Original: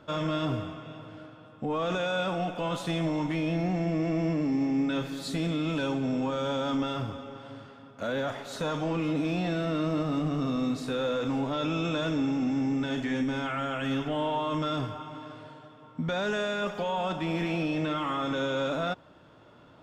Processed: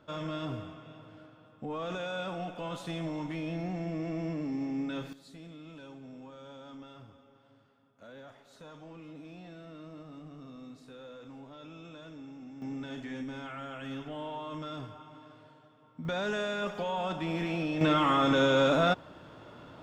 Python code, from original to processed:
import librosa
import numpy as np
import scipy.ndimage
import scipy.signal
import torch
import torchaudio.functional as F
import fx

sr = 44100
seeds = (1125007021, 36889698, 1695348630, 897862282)

y = fx.gain(x, sr, db=fx.steps((0.0, -7.0), (5.13, -19.0), (12.62, -10.0), (16.05, -3.0), (17.81, 5.0)))